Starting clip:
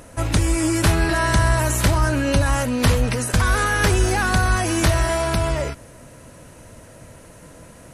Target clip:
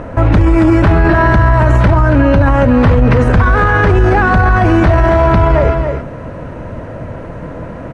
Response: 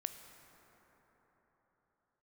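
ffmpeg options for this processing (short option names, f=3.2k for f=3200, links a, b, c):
-af "lowpass=1.5k,aecho=1:1:277:0.299,alimiter=level_in=19dB:limit=-1dB:release=50:level=0:latency=1,volume=-1dB"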